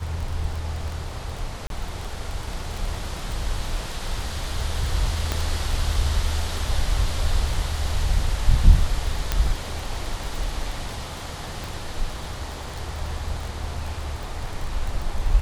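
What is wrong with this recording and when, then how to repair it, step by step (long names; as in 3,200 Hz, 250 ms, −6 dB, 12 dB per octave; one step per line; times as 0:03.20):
surface crackle 23 per second −27 dBFS
0:01.67–0:01.70: drop-out 32 ms
0:05.32: click −9 dBFS
0:09.32: click −7 dBFS
0:11.64: click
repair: click removal
repair the gap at 0:01.67, 32 ms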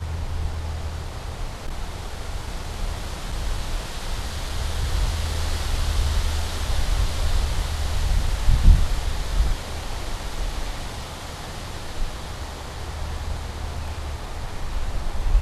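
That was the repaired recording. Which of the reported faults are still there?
0:05.32: click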